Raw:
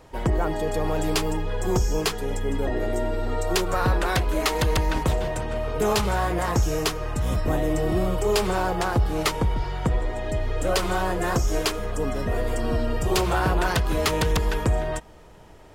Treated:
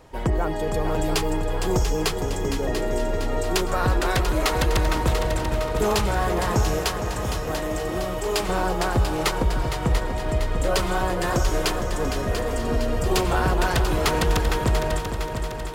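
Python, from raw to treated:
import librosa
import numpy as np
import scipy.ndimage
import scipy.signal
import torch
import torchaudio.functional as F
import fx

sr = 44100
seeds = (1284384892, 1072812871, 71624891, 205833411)

y = fx.low_shelf(x, sr, hz=340.0, db=-10.0, at=(6.79, 8.49))
y = fx.echo_heads(y, sr, ms=230, heads='second and third', feedback_pct=60, wet_db=-9.0)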